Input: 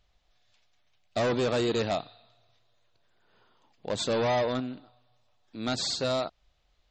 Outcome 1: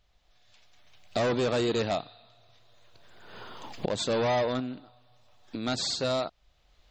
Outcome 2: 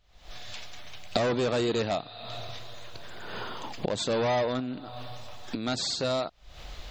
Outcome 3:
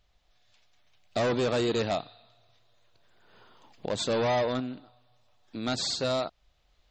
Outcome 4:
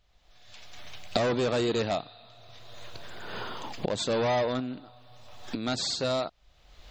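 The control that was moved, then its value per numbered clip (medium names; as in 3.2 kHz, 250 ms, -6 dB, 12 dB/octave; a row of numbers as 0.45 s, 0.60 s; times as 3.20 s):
recorder AGC, rising by: 14 dB/s, 85 dB/s, 5.3 dB/s, 34 dB/s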